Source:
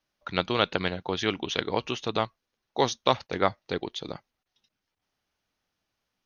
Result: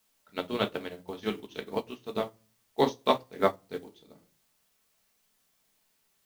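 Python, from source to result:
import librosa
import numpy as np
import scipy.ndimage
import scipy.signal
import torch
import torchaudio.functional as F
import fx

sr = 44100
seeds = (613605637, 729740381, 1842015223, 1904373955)

p1 = fx.peak_eq(x, sr, hz=320.0, db=5.5, octaves=1.7)
p2 = fx.quant_dither(p1, sr, seeds[0], bits=6, dither='triangular')
p3 = p1 + (p2 * 10.0 ** (-9.0 / 20.0))
p4 = fx.room_shoebox(p3, sr, seeds[1], volume_m3=330.0, walls='furnished', distance_m=1.5)
p5 = fx.upward_expand(p4, sr, threshold_db=-27.0, expansion=2.5)
y = p5 * 10.0 ** (-6.0 / 20.0)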